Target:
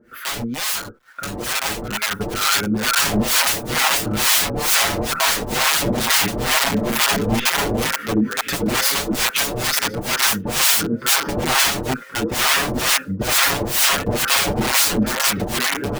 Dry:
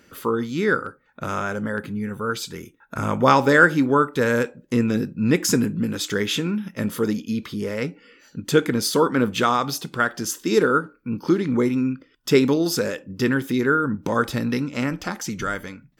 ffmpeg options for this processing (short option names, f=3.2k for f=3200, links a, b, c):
-filter_complex "[0:a]equalizer=f=125:t=o:w=1:g=-5,equalizer=f=1k:t=o:w=1:g=-8,equalizer=f=2k:t=o:w=1:g=5,equalizer=f=4k:t=o:w=1:g=-5,equalizer=f=8k:t=o:w=1:g=-11,asplit=2[a][b];[b]adelay=1078,lowpass=f=1.7k:p=1,volume=-5.5dB,asplit=2[c][d];[d]adelay=1078,lowpass=f=1.7k:p=1,volume=0.45,asplit=2[e][f];[f]adelay=1078,lowpass=f=1.7k:p=1,volume=0.45,asplit=2[g][h];[h]adelay=1078,lowpass=f=1.7k:p=1,volume=0.45,asplit=2[i][j];[j]adelay=1078,lowpass=f=1.7k:p=1,volume=0.45[k];[a][c][e][g][i][k]amix=inputs=6:normalize=0,acrusher=bits=9:mix=0:aa=0.000001,equalizer=f=1.4k:t=o:w=0.73:g=12,acontrast=24,aeval=exprs='(mod(7.08*val(0)+1,2)-1)/7.08':c=same,acrossover=split=690[l][m];[l]aeval=exprs='val(0)*(1-1/2+1/2*cos(2*PI*2.2*n/s))':c=same[n];[m]aeval=exprs='val(0)*(1-1/2-1/2*cos(2*PI*2.2*n/s))':c=same[o];[n][o]amix=inputs=2:normalize=0,dynaudnorm=f=490:g=7:m=9dB,asplit=2[p][q];[q]adelay=6.4,afreqshift=2.2[r];[p][r]amix=inputs=2:normalize=1,volume=3.5dB"